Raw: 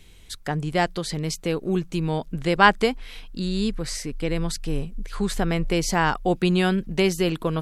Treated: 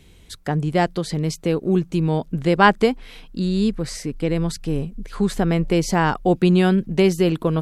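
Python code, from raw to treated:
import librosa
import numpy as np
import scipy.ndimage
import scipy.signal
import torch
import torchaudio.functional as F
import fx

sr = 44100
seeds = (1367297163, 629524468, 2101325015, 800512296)

y = fx.highpass(x, sr, hz=70.0, slope=6)
y = fx.tilt_shelf(y, sr, db=4.0, hz=770.0)
y = y * librosa.db_to_amplitude(2.5)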